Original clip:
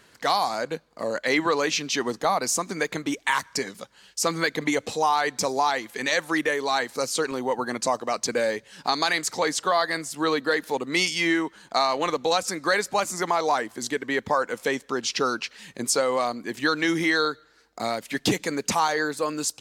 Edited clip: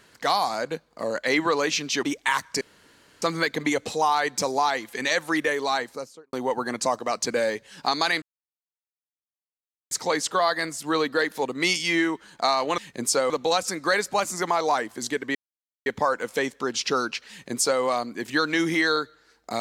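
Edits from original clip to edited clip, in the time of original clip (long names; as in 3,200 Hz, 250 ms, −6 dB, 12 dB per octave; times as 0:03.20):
0:02.03–0:03.04: remove
0:03.62–0:04.23: fill with room tone
0:06.66–0:07.34: fade out and dull
0:09.23: splice in silence 1.69 s
0:14.15: splice in silence 0.51 s
0:15.59–0:16.11: duplicate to 0:12.10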